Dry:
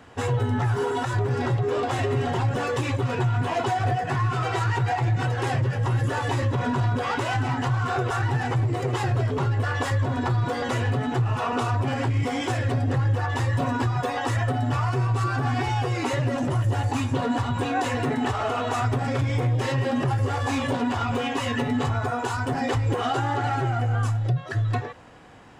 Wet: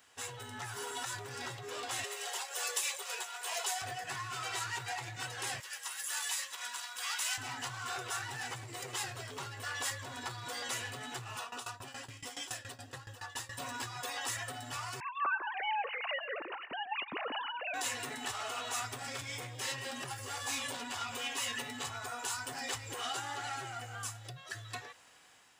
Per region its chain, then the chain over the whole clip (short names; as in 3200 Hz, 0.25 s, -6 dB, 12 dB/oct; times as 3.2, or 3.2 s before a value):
2.04–3.82 Chebyshev high-pass 410 Hz, order 5 + high shelf 5500 Hz +9 dB
5.6–7.38 HPF 1100 Hz + high shelf 6100 Hz +9 dB
11.38–13.58 notch 2200 Hz, Q 7.6 + tremolo saw down 7.1 Hz, depth 90%
15–17.74 sine-wave speech + feedback echo 0.143 s, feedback 46%, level -23 dB
whole clip: pre-emphasis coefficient 0.97; AGC gain up to 3.5 dB